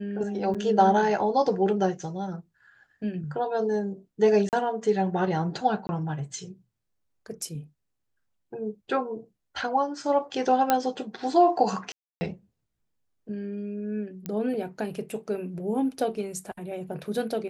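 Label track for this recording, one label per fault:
0.540000	0.550000	gap 6.6 ms
4.490000	4.530000	gap 38 ms
5.870000	5.890000	gap 20 ms
10.700000	10.700000	pop -7 dBFS
11.920000	12.210000	gap 0.29 s
14.260000	14.260000	pop -19 dBFS

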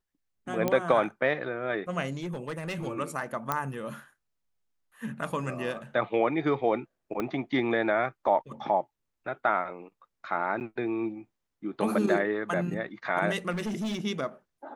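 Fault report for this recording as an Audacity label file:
0.680000	0.680000	pop -13 dBFS
2.220000	2.870000	clipped -29.5 dBFS
3.520000	3.520000	pop -13 dBFS
7.200000	7.200000	pop -18 dBFS
10.600000	10.610000	gap 9.3 ms
13.500000	14.050000	clipped -28.5 dBFS

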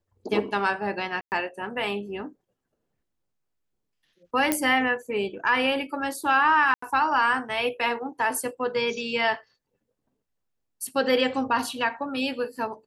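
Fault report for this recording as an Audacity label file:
1.210000	1.320000	gap 0.109 s
4.520000	4.520000	pop -7 dBFS
6.740000	6.820000	gap 84 ms

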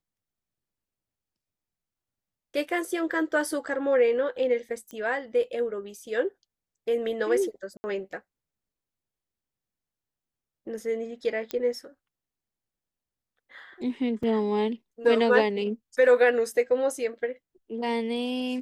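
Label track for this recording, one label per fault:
4.910000	4.910000	pop -25 dBFS
7.770000	7.840000	gap 70 ms
11.510000	11.510000	pop -16 dBFS
14.230000	14.230000	gap 3.8 ms

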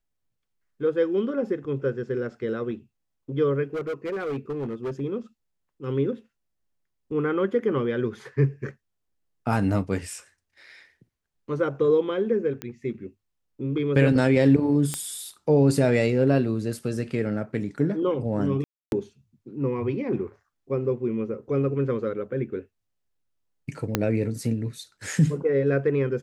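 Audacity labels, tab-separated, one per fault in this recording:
3.730000	5.010000	clipped -26 dBFS
12.620000	12.620000	pop -16 dBFS
14.940000	14.940000	pop -11 dBFS
18.640000	18.920000	gap 0.281 s
23.950000	23.950000	pop -6 dBFS

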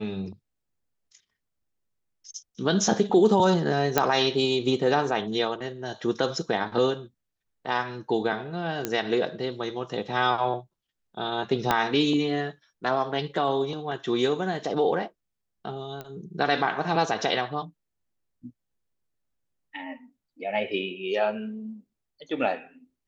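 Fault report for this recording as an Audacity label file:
3.980000	3.980000	pop -5 dBFS
8.850000	8.850000	pop -11 dBFS
11.710000	11.710000	pop -7 dBFS
16.010000	16.010000	pop -22 dBFS

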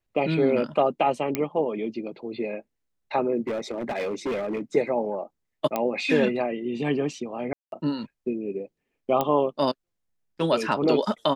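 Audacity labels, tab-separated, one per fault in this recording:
1.350000	1.350000	pop -10 dBFS
3.410000	4.620000	clipped -24.5 dBFS
5.760000	5.760000	pop -12 dBFS
7.530000	7.720000	gap 0.192 s
9.210000	9.210000	pop -11 dBFS

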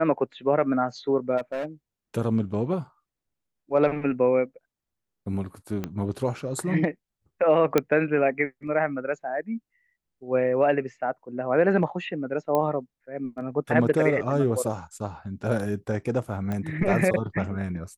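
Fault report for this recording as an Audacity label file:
1.370000	1.650000	clipped -25.5 dBFS
5.840000	5.840000	pop -17 dBFS
7.780000	7.780000	pop -7 dBFS
12.550000	12.550000	pop -13 dBFS
16.520000	16.520000	pop -19 dBFS

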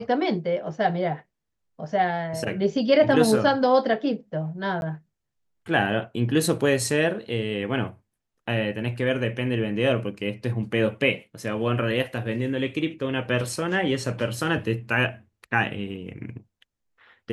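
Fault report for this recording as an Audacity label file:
4.810000	4.820000	gap 11 ms

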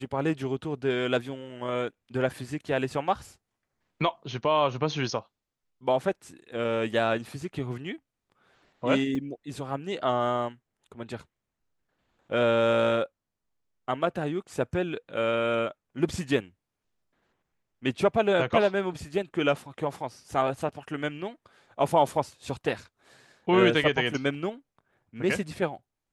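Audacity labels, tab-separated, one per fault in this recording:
9.150000	9.150000	gap 2.7 ms

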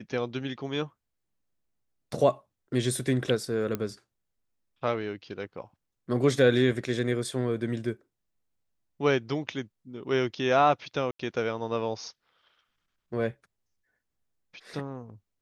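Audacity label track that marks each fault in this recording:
3.750000	3.750000	pop -17 dBFS
11.110000	11.190000	gap 84 ms

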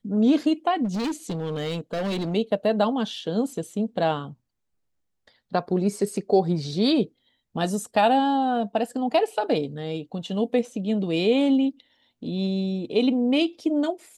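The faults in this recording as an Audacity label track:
0.840000	2.350000	clipped -24 dBFS

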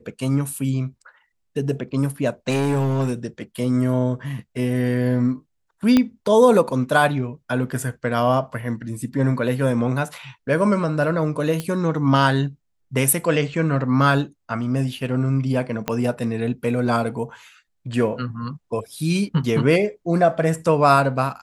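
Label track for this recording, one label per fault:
2.490000	3.130000	clipped -16.5 dBFS
5.970000	5.970000	pop -5 dBFS
11.600000	11.600000	pop -12 dBFS
15.880000	15.880000	pop -8 dBFS

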